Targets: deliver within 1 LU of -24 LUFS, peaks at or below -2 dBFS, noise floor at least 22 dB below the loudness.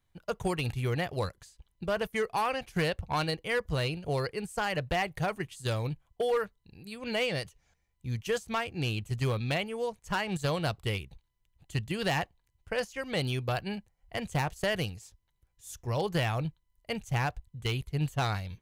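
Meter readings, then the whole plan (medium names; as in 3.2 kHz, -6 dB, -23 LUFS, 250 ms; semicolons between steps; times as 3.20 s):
clipped samples 0.7%; clipping level -22.5 dBFS; loudness -32.5 LUFS; peak level -22.5 dBFS; loudness target -24.0 LUFS
-> clip repair -22.5 dBFS; trim +8.5 dB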